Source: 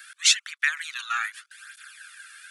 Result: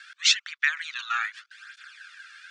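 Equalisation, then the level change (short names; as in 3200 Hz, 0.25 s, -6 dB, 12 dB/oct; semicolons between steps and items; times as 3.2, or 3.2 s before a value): LPF 5900 Hz 24 dB/oct; 0.0 dB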